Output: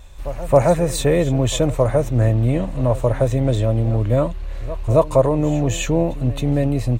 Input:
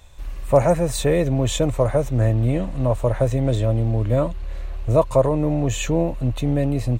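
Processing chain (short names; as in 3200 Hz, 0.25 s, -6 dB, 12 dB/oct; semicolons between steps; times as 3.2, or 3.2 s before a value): reverse echo 0.27 s -16.5 dB; gain +2 dB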